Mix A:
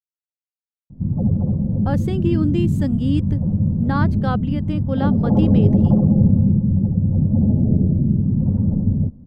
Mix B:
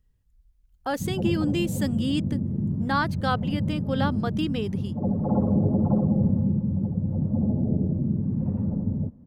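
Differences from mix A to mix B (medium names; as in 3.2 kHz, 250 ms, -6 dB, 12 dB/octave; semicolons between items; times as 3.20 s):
speech: entry -1.00 s; master: add tilt EQ +3 dB/octave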